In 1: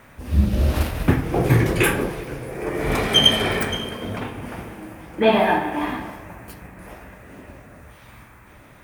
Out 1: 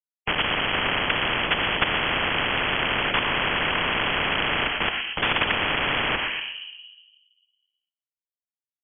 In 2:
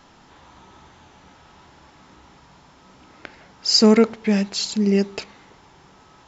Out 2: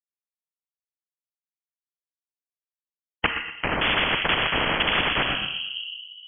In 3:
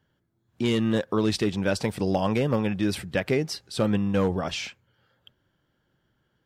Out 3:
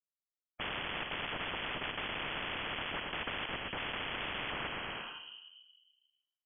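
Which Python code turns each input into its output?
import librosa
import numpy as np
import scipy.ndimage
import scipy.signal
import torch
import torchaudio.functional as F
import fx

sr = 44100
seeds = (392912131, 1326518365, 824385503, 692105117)

p1 = fx.partial_stretch(x, sr, pct=83)
p2 = fx.highpass(p1, sr, hz=56.0, slope=6)
p3 = fx.env_lowpass_down(p2, sr, base_hz=1500.0, full_db=-15.5)
p4 = fx.peak_eq(p3, sr, hz=120.0, db=-10.5, octaves=0.8)
p5 = fx.level_steps(p4, sr, step_db=20)
p6 = fx.whisperise(p5, sr, seeds[0])
p7 = np.where(np.abs(p6) >= 10.0 ** (-41.0 / 20.0), p6, 0.0)
p8 = fx.leveller(p7, sr, passes=1)
p9 = p8 + fx.echo_feedback(p8, sr, ms=120, feedback_pct=29, wet_db=-17.0, dry=0)
p10 = fx.room_shoebox(p9, sr, seeds[1], volume_m3=340.0, walls='mixed', distance_m=0.38)
p11 = fx.freq_invert(p10, sr, carrier_hz=3100)
y = fx.spectral_comp(p11, sr, ratio=10.0)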